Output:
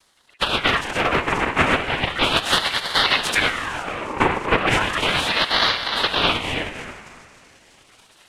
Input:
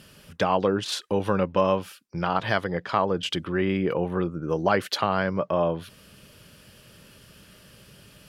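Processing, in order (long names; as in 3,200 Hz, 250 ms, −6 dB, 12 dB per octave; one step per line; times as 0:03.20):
three sine waves on the formant tracks
echo through a band-pass that steps 312 ms, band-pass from 340 Hz, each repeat 0.7 octaves, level −2 dB
0:03.49–0:04.20: output level in coarse steps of 18 dB
cochlear-implant simulation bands 3
speech leveller within 4 dB 0.5 s
0:00.67–0:01.17: hard clipping −18 dBFS, distortion −24 dB
pitch vibrato 6 Hz 5.9 cents
convolution reverb RT60 2.2 s, pre-delay 58 ms, DRR 10 dB
ring modulator whose carrier an LFO sweeps 1,600 Hz, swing 60%, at 0.35 Hz
level +7 dB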